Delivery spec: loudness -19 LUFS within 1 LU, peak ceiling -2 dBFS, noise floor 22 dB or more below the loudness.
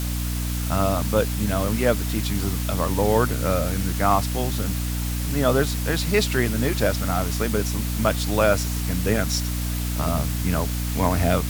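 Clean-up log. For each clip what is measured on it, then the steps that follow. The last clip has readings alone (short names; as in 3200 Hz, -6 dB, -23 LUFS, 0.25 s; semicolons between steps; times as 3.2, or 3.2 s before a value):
hum 60 Hz; harmonics up to 300 Hz; hum level -24 dBFS; noise floor -26 dBFS; noise floor target -45 dBFS; loudness -23.0 LUFS; peak -4.0 dBFS; loudness target -19.0 LUFS
-> notches 60/120/180/240/300 Hz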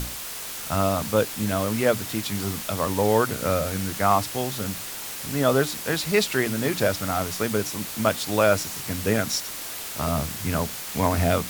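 hum none; noise floor -35 dBFS; noise floor target -47 dBFS
-> denoiser 12 dB, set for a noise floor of -35 dBFS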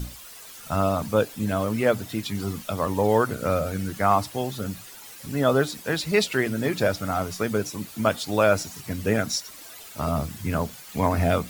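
noise floor -44 dBFS; noise floor target -47 dBFS
-> denoiser 6 dB, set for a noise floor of -44 dBFS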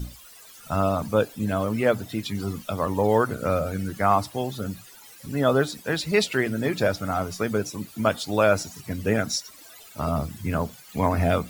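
noise floor -48 dBFS; loudness -25.5 LUFS; peak -5.0 dBFS; loudness target -19.0 LUFS
-> gain +6.5 dB; limiter -2 dBFS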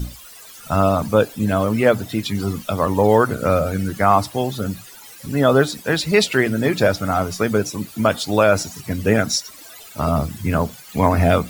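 loudness -19.0 LUFS; peak -2.0 dBFS; noise floor -41 dBFS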